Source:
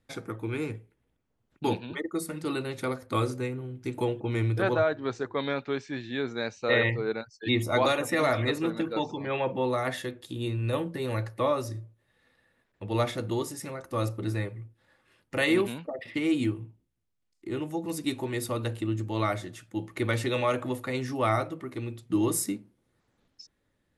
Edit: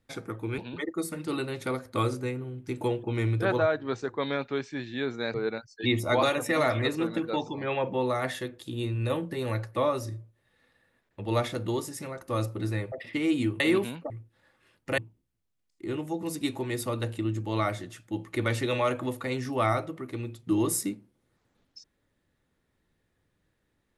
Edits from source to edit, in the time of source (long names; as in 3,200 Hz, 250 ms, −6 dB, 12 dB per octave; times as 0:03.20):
0:00.58–0:01.75: remove
0:06.51–0:06.97: remove
0:14.55–0:15.43: swap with 0:15.93–0:16.61